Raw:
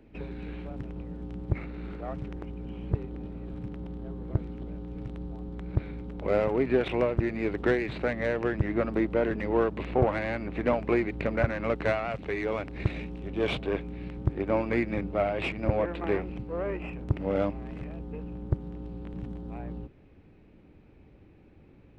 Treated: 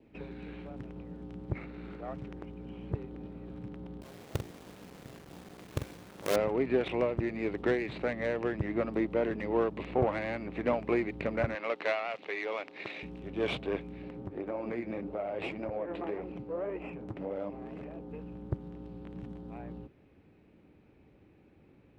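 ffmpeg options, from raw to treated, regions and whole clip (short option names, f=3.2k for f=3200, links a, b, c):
-filter_complex "[0:a]asettb=1/sr,asplit=3[a][b][c];[a]atrim=end=4.014[d];[b]atrim=start=4.01:end=6.36,asetpts=PTS-STARTPTS,afade=t=in:d=0.004:c=qsin,afade=t=out:st=2.346:d=0.004:c=qsin,bandreject=f=60:t=h:w=6,bandreject=f=120:t=h:w=6,bandreject=f=180:t=h:w=6,bandreject=f=240:t=h:w=6,bandreject=f=300:t=h:w=6,bandreject=f=360:t=h:w=6,bandreject=f=420:t=h:w=6,acrusher=bits=5:dc=4:mix=0:aa=0.000001,asplit=2[e][f];[f]adelay=45,volume=-8dB[g];[e][g]amix=inputs=2:normalize=0,atrim=end_sample=103635[h];[c]atrim=start=6.356[i];[d][h]acrossfade=d=0.004:c1=hsin:c2=qsin[j];[j][i]acrossfade=d=0.004:c1=qsin:c2=hsin,asettb=1/sr,asplit=3[k][l][m];[k]atrim=end=11.554[n];[l]atrim=start=11.55:end=13.03,asetpts=PTS-STARTPTS,afade=t=in:d=0.004:c=qsin,afade=t=out:st=1.476:d=0.004:c=qsin,highpass=450,lowpass=4.8k,highshelf=f=2.5k:g=8.5[o];[m]atrim=start=13.026[p];[n][o]acrossfade=d=0.004:c1=hsin:c2=qsin[q];[q][p]acrossfade=d=0.004:c1=qsin:c2=hsin,asettb=1/sr,asplit=3[r][s][t];[r]atrim=end=14.024[u];[s]atrim=start=14.02:end=18.1,asetpts=PTS-STARTPTS,afade=t=in:d=0.004:c=qsin,afade=t=out:st=4.076:d=0.004:c=qsin,equalizer=f=500:w=0.48:g=8,acompressor=threshold=-24dB:ratio=6:attack=3.2:release=140:knee=1:detection=peak,flanger=delay=0.9:depth=9.9:regen=59:speed=1.8:shape=triangular[v];[t]atrim=start=18.096[w];[u][v]acrossfade=d=0.004:c1=hsin:c2=qsin[x];[x][w]acrossfade=d=0.004:c1=qsin:c2=hsin,highpass=f=120:p=1,adynamicequalizer=threshold=0.00282:dfrequency=1500:dqfactor=4.1:tfrequency=1500:tqfactor=4.1:attack=5:release=100:ratio=0.375:range=2.5:mode=cutabove:tftype=bell,volume=-3dB"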